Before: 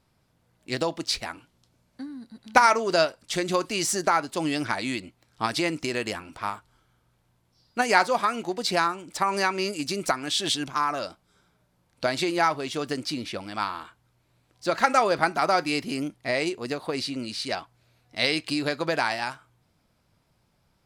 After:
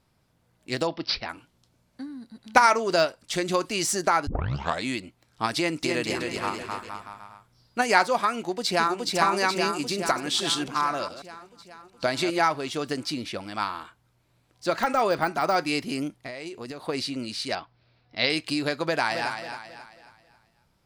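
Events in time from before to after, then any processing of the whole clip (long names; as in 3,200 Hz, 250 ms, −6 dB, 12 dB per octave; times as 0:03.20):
0:00.87–0:01.29: bad sample-rate conversion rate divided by 4×, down none, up filtered
0:02.70–0:03.40: de-essing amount 50%
0:04.27: tape start 0.57 s
0:05.57–0:07.87: bouncing-ball delay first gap 260 ms, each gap 0.8×, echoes 5
0:08.37–0:09.15: delay throw 420 ms, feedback 65%, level −1.5 dB
0:09.86–0:12.40: delay that plays each chunk backwards 136 ms, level −12 dB
0:14.71–0:15.56: de-essing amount 75%
0:16.16–0:16.86: downward compressor 16 to 1, threshold −32 dBFS
0:17.55–0:18.30: Butterworth low-pass 5,400 Hz 72 dB per octave
0:18.83–0:19.31: delay throw 270 ms, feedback 40%, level −8 dB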